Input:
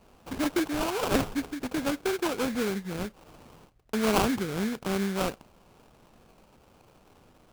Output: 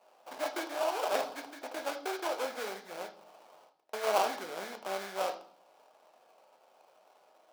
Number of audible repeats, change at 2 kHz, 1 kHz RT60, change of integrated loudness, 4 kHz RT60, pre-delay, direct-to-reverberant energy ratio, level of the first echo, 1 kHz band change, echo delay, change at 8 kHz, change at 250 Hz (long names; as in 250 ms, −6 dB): no echo audible, −5.0 dB, 0.50 s, −6.0 dB, 0.50 s, 3 ms, 5.5 dB, no echo audible, −1.0 dB, no echo audible, −6.5 dB, −18.5 dB